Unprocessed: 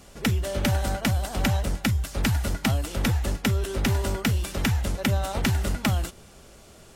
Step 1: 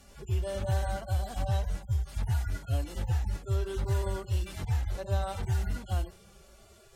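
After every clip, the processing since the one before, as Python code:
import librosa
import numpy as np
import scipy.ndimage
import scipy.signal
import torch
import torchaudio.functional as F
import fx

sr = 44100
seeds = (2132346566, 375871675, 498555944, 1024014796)

y = fx.hpss_only(x, sr, part='harmonic')
y = y * 10.0 ** (-3.5 / 20.0)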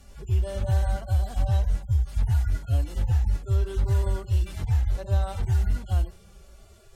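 y = fx.low_shelf(x, sr, hz=96.0, db=11.0)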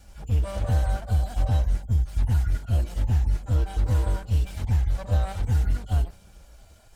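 y = fx.lower_of_two(x, sr, delay_ms=1.3)
y = y * 10.0 ** (1.0 / 20.0)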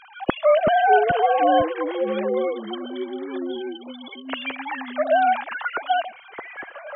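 y = fx.sine_speech(x, sr)
y = fx.spec_erase(y, sr, start_s=2.26, length_s=2.03, low_hz=340.0, high_hz=3000.0)
y = fx.echo_pitch(y, sr, ms=260, semitones=-6, count=3, db_per_echo=-6.0)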